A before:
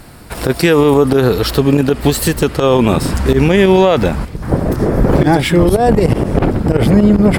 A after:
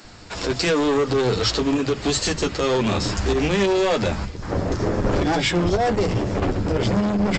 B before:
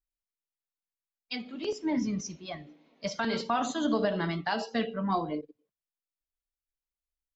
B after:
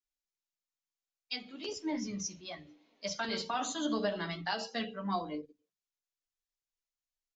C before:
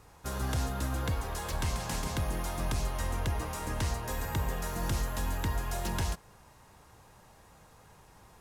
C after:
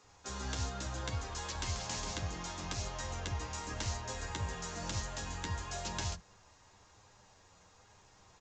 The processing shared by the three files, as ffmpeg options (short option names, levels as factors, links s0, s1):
-filter_complex "[0:a]highshelf=f=3600:g=11,flanger=delay=9.7:depth=1:regen=-23:speed=1:shape=sinusoidal,aresample=16000,volume=4.73,asoftclip=hard,volume=0.211,aresample=44100,acrossover=split=180[s0][s1];[s0]adelay=40[s2];[s2][s1]amix=inputs=2:normalize=0,volume=0.75"